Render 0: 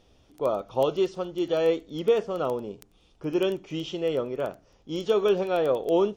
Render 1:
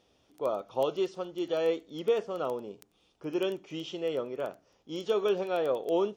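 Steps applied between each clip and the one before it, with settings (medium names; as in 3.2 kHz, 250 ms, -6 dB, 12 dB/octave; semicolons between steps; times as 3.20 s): high-pass 230 Hz 6 dB/octave; trim -4 dB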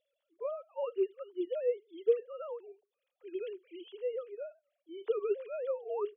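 formants replaced by sine waves; trim -5 dB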